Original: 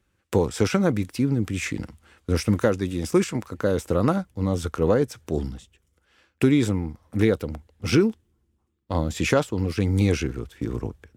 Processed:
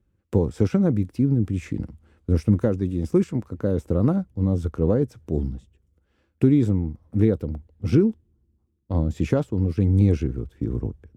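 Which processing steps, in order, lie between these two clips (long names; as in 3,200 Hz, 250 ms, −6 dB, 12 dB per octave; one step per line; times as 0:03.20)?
tilt shelving filter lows +9.5 dB, about 650 Hz
level −5 dB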